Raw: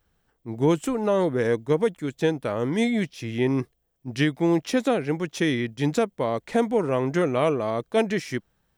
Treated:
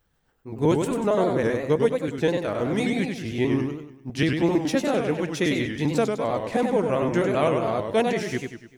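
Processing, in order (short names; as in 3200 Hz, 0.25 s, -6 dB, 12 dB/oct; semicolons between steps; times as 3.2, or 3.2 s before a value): trilling pitch shifter +1 st, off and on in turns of 65 ms; warbling echo 98 ms, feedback 45%, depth 180 cents, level -5 dB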